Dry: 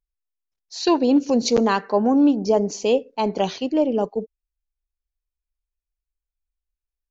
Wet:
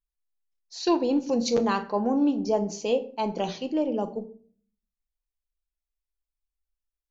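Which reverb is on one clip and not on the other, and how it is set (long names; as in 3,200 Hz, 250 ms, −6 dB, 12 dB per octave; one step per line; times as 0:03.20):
rectangular room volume 450 cubic metres, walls furnished, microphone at 0.78 metres
level −6.5 dB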